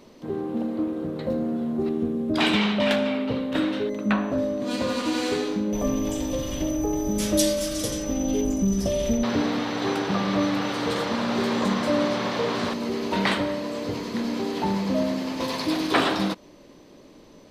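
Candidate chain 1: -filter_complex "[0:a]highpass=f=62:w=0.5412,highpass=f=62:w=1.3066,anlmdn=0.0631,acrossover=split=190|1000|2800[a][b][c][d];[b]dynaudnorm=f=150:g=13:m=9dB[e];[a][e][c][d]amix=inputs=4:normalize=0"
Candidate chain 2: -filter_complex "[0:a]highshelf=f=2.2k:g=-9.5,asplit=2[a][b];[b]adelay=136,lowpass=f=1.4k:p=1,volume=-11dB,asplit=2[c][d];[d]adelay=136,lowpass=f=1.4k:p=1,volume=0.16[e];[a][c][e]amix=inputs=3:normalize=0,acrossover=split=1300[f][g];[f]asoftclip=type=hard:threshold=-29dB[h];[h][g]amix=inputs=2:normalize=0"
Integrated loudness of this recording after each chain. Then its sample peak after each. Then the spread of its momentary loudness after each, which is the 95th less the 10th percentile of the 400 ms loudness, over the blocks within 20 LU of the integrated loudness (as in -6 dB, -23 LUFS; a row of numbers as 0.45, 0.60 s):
-18.5, -31.0 LUFS; -1.5, -15.0 dBFS; 6, 4 LU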